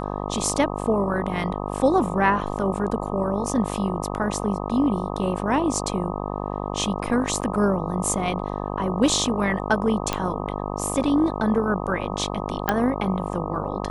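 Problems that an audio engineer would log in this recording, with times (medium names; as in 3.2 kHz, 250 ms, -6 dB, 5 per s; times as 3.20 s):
buzz 50 Hz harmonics 25 -29 dBFS
7.41–7.42 s: dropout 8 ms
10.13 s: pop -8 dBFS
12.69 s: pop -6 dBFS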